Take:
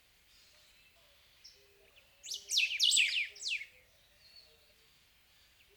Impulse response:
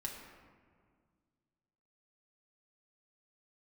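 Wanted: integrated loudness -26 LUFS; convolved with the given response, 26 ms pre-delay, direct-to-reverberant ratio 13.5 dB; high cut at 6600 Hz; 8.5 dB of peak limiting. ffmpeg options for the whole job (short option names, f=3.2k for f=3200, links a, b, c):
-filter_complex "[0:a]lowpass=6.6k,alimiter=level_in=2dB:limit=-24dB:level=0:latency=1,volume=-2dB,asplit=2[a][b];[1:a]atrim=start_sample=2205,adelay=26[c];[b][c]afir=irnorm=-1:irlink=0,volume=-12.5dB[d];[a][d]amix=inputs=2:normalize=0,volume=8.5dB"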